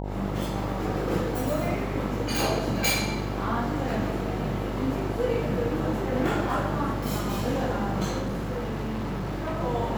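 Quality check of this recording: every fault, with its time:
buzz 50 Hz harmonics 19 -32 dBFS
8.22–9.61 s: clipped -26.5 dBFS

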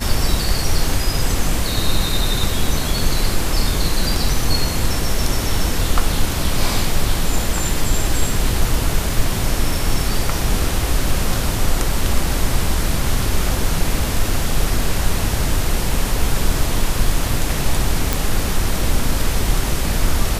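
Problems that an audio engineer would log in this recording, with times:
18.13 s: pop

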